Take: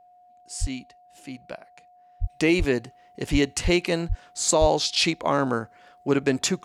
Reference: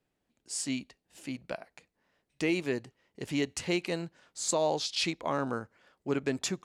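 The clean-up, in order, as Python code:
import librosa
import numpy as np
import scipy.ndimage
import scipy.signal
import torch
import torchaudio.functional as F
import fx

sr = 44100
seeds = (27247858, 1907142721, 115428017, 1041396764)

y = fx.notch(x, sr, hz=720.0, q=30.0)
y = fx.fix_deplosive(y, sr, at_s=(0.6, 2.2, 2.58, 3.31, 3.63, 4.08, 4.6))
y = fx.gain(y, sr, db=fx.steps((0.0, 0.0), (2.23, -8.5)))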